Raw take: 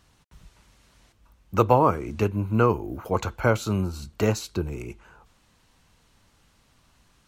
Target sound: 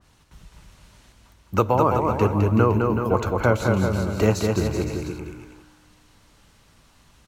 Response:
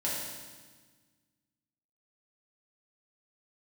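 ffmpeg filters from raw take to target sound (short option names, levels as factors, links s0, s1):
-filter_complex "[0:a]alimiter=limit=0.316:level=0:latency=1:release=470,aecho=1:1:210|378|512.4|619.9|705.9:0.631|0.398|0.251|0.158|0.1,asplit=2[s0][s1];[1:a]atrim=start_sample=2205[s2];[s1][s2]afir=irnorm=-1:irlink=0,volume=0.0668[s3];[s0][s3]amix=inputs=2:normalize=0,adynamicequalizer=threshold=0.01:dfrequency=2000:dqfactor=0.7:tfrequency=2000:tqfactor=0.7:attack=5:release=100:ratio=0.375:range=2:mode=cutabove:tftype=highshelf,volume=1.41"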